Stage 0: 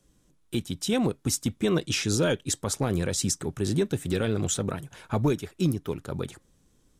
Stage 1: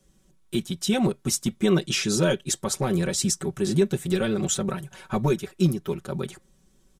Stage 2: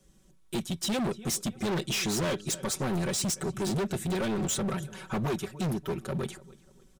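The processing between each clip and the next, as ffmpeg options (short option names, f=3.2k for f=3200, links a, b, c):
-af "aecho=1:1:5.3:0.86"
-filter_complex "[0:a]asplit=2[a][b];[b]adelay=293,lowpass=f=4.8k:p=1,volume=-23dB,asplit=2[c][d];[d]adelay=293,lowpass=f=4.8k:p=1,volume=0.41,asplit=2[e][f];[f]adelay=293,lowpass=f=4.8k:p=1,volume=0.41[g];[a][c][e][g]amix=inputs=4:normalize=0,asoftclip=type=hard:threshold=-27dB"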